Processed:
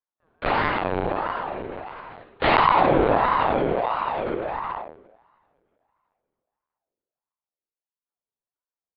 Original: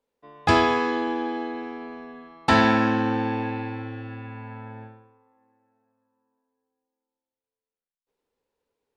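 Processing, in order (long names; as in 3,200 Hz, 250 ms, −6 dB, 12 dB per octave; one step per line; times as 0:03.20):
source passing by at 0:03.82, 7 m/s, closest 8.7 metres
low-shelf EQ 140 Hz +11 dB
hum removal 143.9 Hz, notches 33
leveller curve on the samples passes 3
pitch-shifted copies added −12 semitones −15 dB, +7 semitones 0 dB, +12 semitones −18 dB
coupled-rooms reverb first 0.72 s, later 3.2 s, from −20 dB, DRR 9.5 dB
pitch shifter −5.5 semitones
linear-prediction vocoder at 8 kHz pitch kept
ring modulator whose carrier an LFO sweeps 720 Hz, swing 45%, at 1.5 Hz
level −5 dB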